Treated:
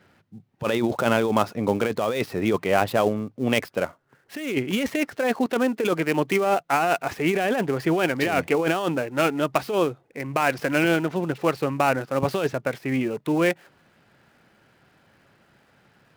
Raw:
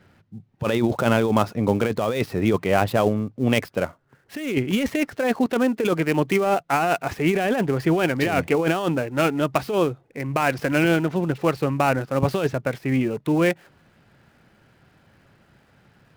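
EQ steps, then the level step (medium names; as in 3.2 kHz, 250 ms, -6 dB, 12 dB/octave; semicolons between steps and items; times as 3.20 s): bass shelf 150 Hz -10.5 dB; 0.0 dB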